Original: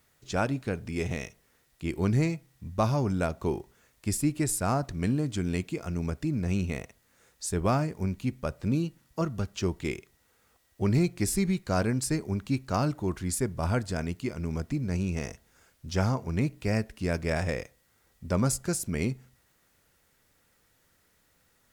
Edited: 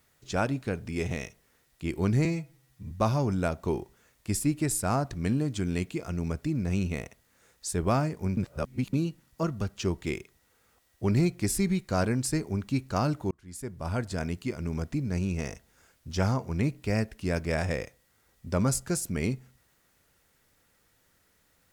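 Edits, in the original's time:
2.25–2.69 stretch 1.5×
8.15–8.71 reverse
13.09–14.01 fade in

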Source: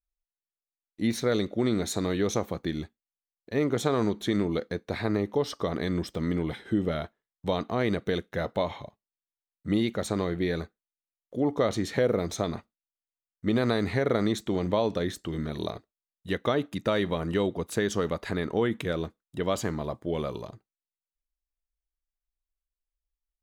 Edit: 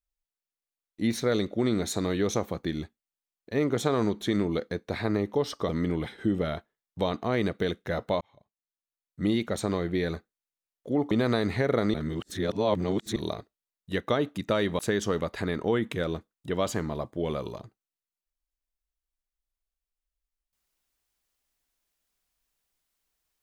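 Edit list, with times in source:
5.69–6.16 cut
8.68–9.81 fade in
11.58–13.48 cut
14.31–15.53 reverse
17.16–17.68 cut

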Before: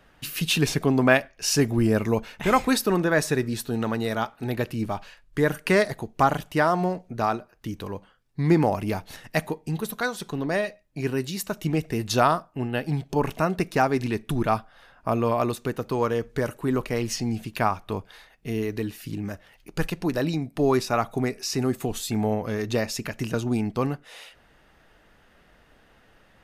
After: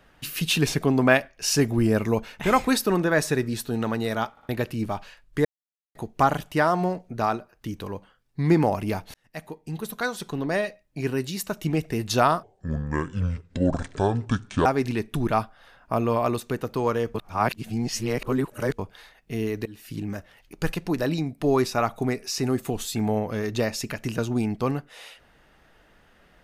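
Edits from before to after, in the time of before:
4.31 stutter in place 0.06 s, 3 plays
5.45–5.95 mute
9.14–10.11 fade in
12.43–13.81 speed 62%
16.3–17.94 reverse
18.81–19.11 fade in, from -21 dB

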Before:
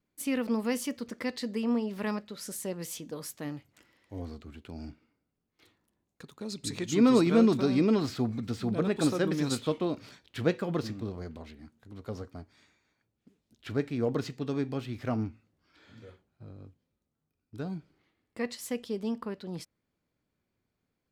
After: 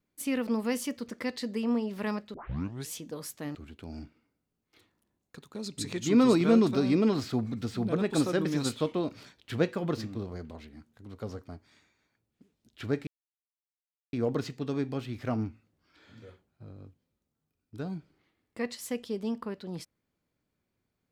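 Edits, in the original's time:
2.34 tape start 0.58 s
3.55–4.41 cut
13.93 insert silence 1.06 s

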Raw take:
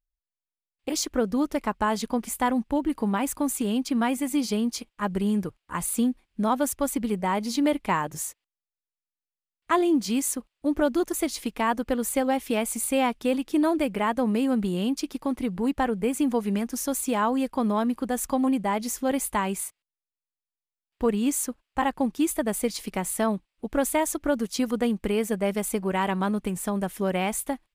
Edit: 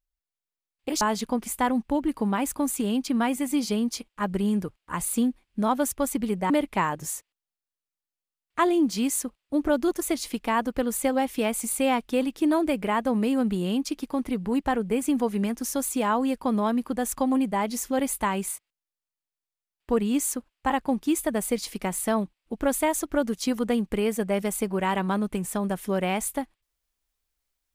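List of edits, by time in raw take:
1.01–1.82 cut
7.31–7.62 cut

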